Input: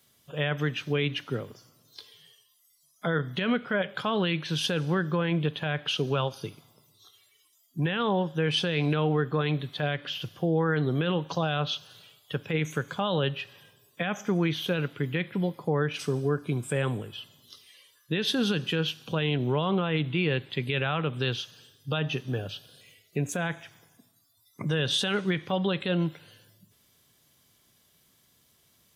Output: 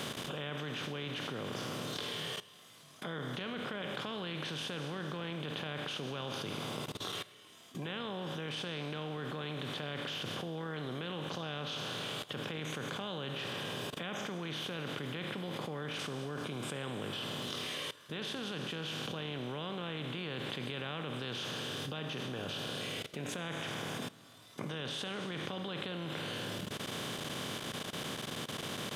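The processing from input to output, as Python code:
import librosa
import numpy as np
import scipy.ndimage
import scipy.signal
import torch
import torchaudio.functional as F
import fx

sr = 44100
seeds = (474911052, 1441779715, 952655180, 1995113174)

y = fx.bin_compress(x, sr, power=0.4)
y = fx.level_steps(y, sr, step_db=18)
y = F.gain(torch.from_numpy(y), -3.5).numpy()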